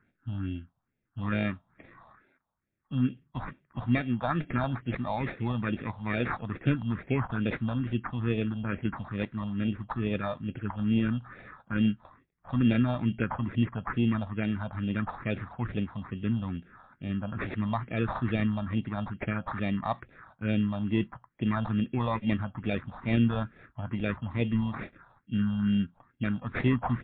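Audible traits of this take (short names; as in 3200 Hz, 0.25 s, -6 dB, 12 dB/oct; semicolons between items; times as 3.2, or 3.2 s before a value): aliases and images of a low sample rate 3000 Hz, jitter 0%; phasing stages 4, 2.3 Hz, lowest notch 350–1100 Hz; MP3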